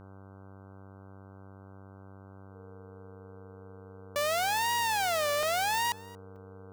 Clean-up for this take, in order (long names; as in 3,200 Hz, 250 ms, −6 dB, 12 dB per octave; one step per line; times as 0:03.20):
hum removal 96.9 Hz, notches 16
notch filter 460 Hz, Q 30
repair the gap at 0:05.43/0:06.36, 2.6 ms
echo removal 230 ms −22 dB